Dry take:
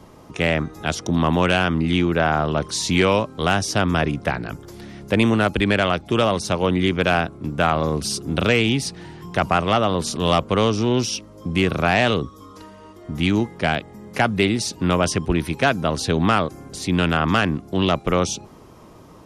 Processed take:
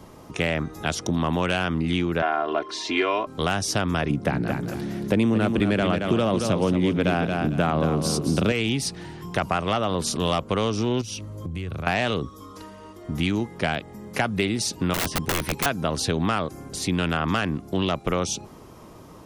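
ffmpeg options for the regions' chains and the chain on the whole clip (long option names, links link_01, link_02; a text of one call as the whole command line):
ffmpeg -i in.wav -filter_complex "[0:a]asettb=1/sr,asplit=3[link_01][link_02][link_03];[link_01]atrim=end=2.224[link_04];[link_02]atrim=start=2.22:end=3.27,asetpts=PTS-STARTPTS,afade=type=in:duration=0.004:curve=qsin,afade=type=out:start_time=1.046:duration=0.004:curve=qsin,highpass=350,lowpass=2800,aecho=1:1:2.9:0.84,atrim=end_sample=46305[link_05];[link_03]atrim=start=3.266[link_06];[link_04][link_05]acrossfade=duration=0.004:curve1=hsin:curve2=qsin[link_07];[link_07][link_06]acrossfade=duration=0.004:curve1=qsin:curve2=hsin,asettb=1/sr,asplit=3[link_08][link_09][link_10];[link_08]atrim=end=4.104[link_11];[link_09]atrim=start=4.1:end=8.52,asetpts=PTS-STARTPTS,afade=type=in:duration=0.004:curve=qsin,afade=type=out:start_time=4.416:duration=0.004:curve=qsin,highpass=51,equalizer=frequency=210:width_type=o:width=2.8:gain=8.5,aecho=1:1:225|450|675:0.398|0.0955|0.0229,atrim=end_sample=194922[link_12];[link_10]atrim=start=8.516[link_13];[link_11][link_12]acrossfade=duration=0.004:curve1=hsin:curve2=qsin[link_14];[link_14][link_13]acrossfade=duration=0.004:curve1=qsin:curve2=hsin,asettb=1/sr,asplit=3[link_15][link_16][link_17];[link_15]atrim=end=11.014[link_18];[link_16]atrim=start=11.01:end=11.87,asetpts=PTS-STARTPTS,afade=type=in:duration=0.004:curve=qsin,afade=type=out:start_time=0.856:duration=0.004:curve=qsin,equalizer=frequency=96:width_type=o:width=0.98:gain=14.5,bandreject=frequency=5300:width=9.7,acompressor=threshold=-29dB:ratio=6:attack=3.2:release=140:knee=1:detection=peak[link_19];[link_17]atrim=start=11.866[link_20];[link_18][link_19]acrossfade=duration=0.004:curve1=hsin:curve2=qsin[link_21];[link_21][link_20]acrossfade=duration=0.004:curve1=qsin:curve2=hsin,asettb=1/sr,asplit=3[link_22][link_23][link_24];[link_22]atrim=end=14.944[link_25];[link_23]atrim=start=14.94:end=15.66,asetpts=PTS-STARTPTS,afade=type=in:duration=0.004:curve=qsin,afade=type=out:start_time=0.716:duration=0.004:curve=qsin,acrossover=split=3300[link_26][link_27];[link_27]acompressor=threshold=-36dB:ratio=4:attack=1:release=60[link_28];[link_26][link_28]amix=inputs=2:normalize=0,aeval=exprs='(mod(6.31*val(0)+1,2)-1)/6.31':channel_layout=same[link_29];[link_24]atrim=start=15.656[link_30];[link_25][link_29]acrossfade=duration=0.004:curve1=hsin:curve2=qsin[link_31];[link_31][link_30]acrossfade=duration=0.004:curve1=qsin:curve2=hsin,highshelf=frequency=9900:gain=5.5,acompressor=threshold=-21dB:ratio=3" out.wav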